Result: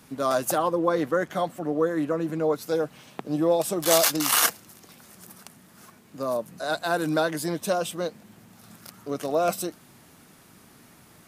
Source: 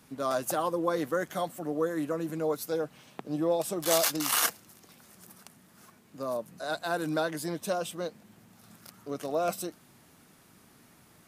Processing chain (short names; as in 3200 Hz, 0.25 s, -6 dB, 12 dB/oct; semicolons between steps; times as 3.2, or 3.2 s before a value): 0.58–2.66 high shelf 5900 Hz -11.5 dB; gain +5.5 dB